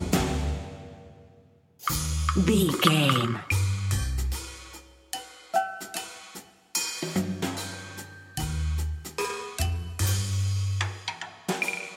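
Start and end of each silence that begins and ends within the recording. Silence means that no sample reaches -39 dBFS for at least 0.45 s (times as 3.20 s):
1.07–1.82 s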